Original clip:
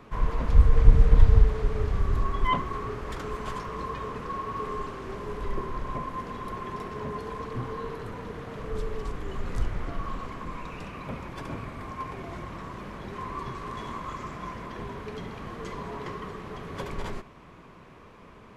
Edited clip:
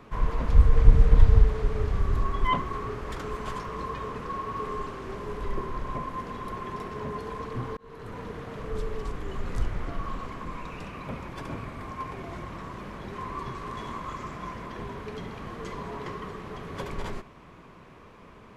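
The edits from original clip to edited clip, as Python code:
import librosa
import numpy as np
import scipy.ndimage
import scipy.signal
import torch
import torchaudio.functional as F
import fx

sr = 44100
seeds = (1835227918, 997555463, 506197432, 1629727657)

y = fx.edit(x, sr, fx.fade_in_span(start_s=7.77, length_s=0.41), tone=tone)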